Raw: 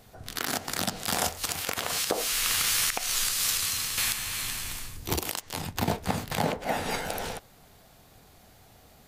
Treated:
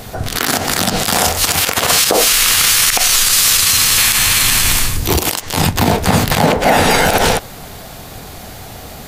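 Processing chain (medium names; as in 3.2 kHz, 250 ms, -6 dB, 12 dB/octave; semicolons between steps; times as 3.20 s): loudness maximiser +24.5 dB; trim -1 dB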